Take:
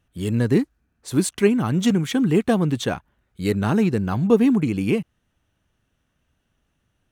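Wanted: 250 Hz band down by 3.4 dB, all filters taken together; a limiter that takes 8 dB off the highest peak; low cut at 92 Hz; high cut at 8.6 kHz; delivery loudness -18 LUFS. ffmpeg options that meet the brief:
-af "highpass=92,lowpass=8600,equalizer=f=250:t=o:g=-4,volume=2.24,alimiter=limit=0.447:level=0:latency=1"

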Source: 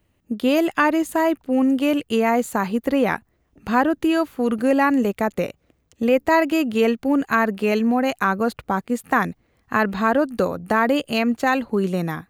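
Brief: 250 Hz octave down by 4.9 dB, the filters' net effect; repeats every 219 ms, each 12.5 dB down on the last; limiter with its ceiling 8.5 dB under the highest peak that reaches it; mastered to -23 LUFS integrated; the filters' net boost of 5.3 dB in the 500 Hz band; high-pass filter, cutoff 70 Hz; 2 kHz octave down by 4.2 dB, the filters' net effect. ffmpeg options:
-af "highpass=70,equalizer=f=250:t=o:g=-8.5,equalizer=f=500:t=o:g=8.5,equalizer=f=2000:t=o:g=-6,alimiter=limit=0.266:level=0:latency=1,aecho=1:1:219|438|657:0.237|0.0569|0.0137,volume=0.891"

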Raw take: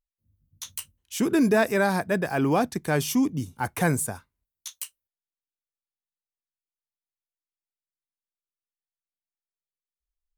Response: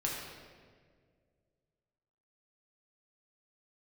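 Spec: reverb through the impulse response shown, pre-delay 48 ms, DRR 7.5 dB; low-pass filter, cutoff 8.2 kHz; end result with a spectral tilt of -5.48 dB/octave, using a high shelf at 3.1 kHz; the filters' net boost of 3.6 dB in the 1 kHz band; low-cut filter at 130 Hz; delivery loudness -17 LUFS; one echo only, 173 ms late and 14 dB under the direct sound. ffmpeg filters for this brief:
-filter_complex "[0:a]highpass=130,lowpass=8200,equalizer=f=1000:t=o:g=5.5,highshelf=f=3100:g=-5.5,aecho=1:1:173:0.2,asplit=2[s0][s1];[1:a]atrim=start_sample=2205,adelay=48[s2];[s1][s2]afir=irnorm=-1:irlink=0,volume=0.251[s3];[s0][s3]amix=inputs=2:normalize=0,volume=2"

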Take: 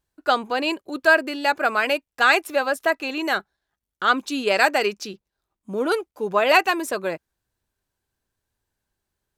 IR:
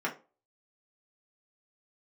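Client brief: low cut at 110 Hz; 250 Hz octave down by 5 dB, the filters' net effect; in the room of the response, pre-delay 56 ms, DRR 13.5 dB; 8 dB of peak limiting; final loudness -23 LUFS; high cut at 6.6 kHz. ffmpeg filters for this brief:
-filter_complex "[0:a]highpass=110,lowpass=6600,equalizer=f=250:t=o:g=-6.5,alimiter=limit=0.299:level=0:latency=1,asplit=2[s0][s1];[1:a]atrim=start_sample=2205,adelay=56[s2];[s1][s2]afir=irnorm=-1:irlink=0,volume=0.0891[s3];[s0][s3]amix=inputs=2:normalize=0,volume=1.12"

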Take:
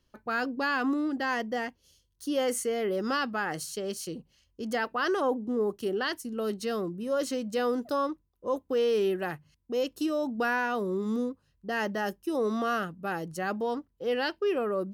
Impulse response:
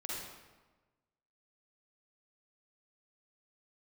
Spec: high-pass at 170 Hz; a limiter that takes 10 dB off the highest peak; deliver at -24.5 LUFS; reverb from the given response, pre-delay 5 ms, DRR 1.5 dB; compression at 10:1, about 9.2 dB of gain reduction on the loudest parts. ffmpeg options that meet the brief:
-filter_complex "[0:a]highpass=170,acompressor=threshold=0.0224:ratio=10,alimiter=level_in=2.66:limit=0.0631:level=0:latency=1,volume=0.376,asplit=2[s0][s1];[1:a]atrim=start_sample=2205,adelay=5[s2];[s1][s2]afir=irnorm=-1:irlink=0,volume=0.708[s3];[s0][s3]amix=inputs=2:normalize=0,volume=5.31"

